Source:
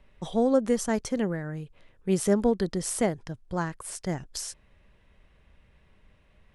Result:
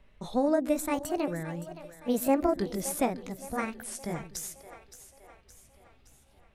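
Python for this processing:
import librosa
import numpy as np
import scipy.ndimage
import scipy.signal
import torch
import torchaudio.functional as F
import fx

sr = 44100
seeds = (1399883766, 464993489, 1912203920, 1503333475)

y = fx.pitch_ramps(x, sr, semitones=6.5, every_ms=1278)
y = fx.echo_split(y, sr, split_hz=380.0, low_ms=125, high_ms=568, feedback_pct=52, wet_db=-13.5)
y = y * 10.0 ** (-1.5 / 20.0)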